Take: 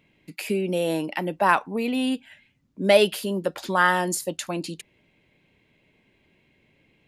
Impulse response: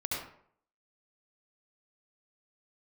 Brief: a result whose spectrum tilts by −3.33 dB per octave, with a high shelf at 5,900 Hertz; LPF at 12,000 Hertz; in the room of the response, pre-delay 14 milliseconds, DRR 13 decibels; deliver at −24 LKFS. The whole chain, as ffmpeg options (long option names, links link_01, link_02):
-filter_complex "[0:a]lowpass=12000,highshelf=frequency=5900:gain=-8.5,asplit=2[link_01][link_02];[1:a]atrim=start_sample=2205,adelay=14[link_03];[link_02][link_03]afir=irnorm=-1:irlink=0,volume=-17.5dB[link_04];[link_01][link_04]amix=inputs=2:normalize=0"